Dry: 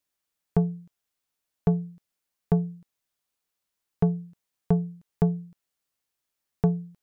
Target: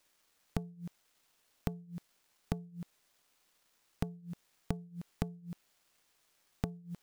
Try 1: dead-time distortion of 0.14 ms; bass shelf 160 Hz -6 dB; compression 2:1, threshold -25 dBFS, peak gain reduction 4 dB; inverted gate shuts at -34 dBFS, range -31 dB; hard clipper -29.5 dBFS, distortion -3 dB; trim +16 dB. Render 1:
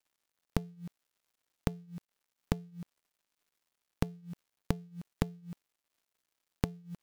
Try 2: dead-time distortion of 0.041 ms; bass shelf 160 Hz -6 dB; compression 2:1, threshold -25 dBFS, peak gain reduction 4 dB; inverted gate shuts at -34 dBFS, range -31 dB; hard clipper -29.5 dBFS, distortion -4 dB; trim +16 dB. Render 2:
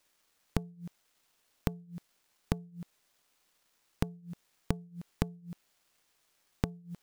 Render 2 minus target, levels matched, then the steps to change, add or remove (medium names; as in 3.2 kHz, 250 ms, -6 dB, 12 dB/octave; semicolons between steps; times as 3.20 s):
hard clipper: distortion -4 dB
change: hard clipper -35.5 dBFS, distortion 0 dB